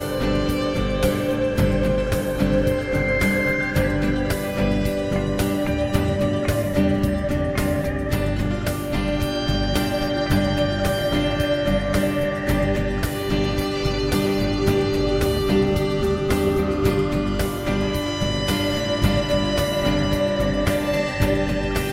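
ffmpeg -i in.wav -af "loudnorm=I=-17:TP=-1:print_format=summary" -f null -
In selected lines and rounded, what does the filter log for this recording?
Input Integrated:    -21.6 LUFS
Input True Peak:      -4.8 dBTP
Input LRA:             1.5 LU
Input Threshold:     -31.6 LUFS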